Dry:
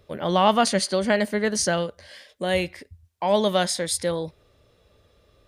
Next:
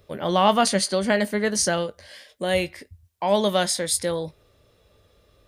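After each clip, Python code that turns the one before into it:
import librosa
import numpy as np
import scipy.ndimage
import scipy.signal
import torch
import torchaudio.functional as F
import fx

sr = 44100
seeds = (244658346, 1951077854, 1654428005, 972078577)

y = fx.high_shelf(x, sr, hz=10000.0, db=7.0)
y = fx.doubler(y, sr, ms=20.0, db=-14)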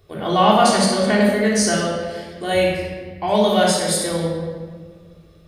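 y = fx.room_shoebox(x, sr, seeds[0], volume_m3=1900.0, walls='mixed', distance_m=3.4)
y = y * librosa.db_to_amplitude(-1.5)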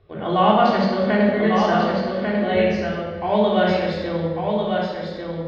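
y = scipy.signal.sosfilt(scipy.signal.bessel(8, 2600.0, 'lowpass', norm='mag', fs=sr, output='sos'), x)
y = y + 10.0 ** (-4.5 / 20.0) * np.pad(y, (int(1145 * sr / 1000.0), 0))[:len(y)]
y = y * librosa.db_to_amplitude(-1.5)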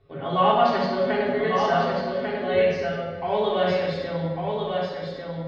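y = x + 0.89 * np.pad(x, (int(7.3 * sr / 1000.0), 0))[:len(x)]
y = y * librosa.db_to_amplitude(-5.5)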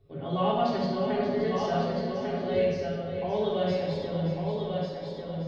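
y = fx.peak_eq(x, sr, hz=1500.0, db=-12.5, octaves=2.6)
y = y + 10.0 ** (-9.5 / 20.0) * np.pad(y, (int(577 * sr / 1000.0), 0))[:len(y)]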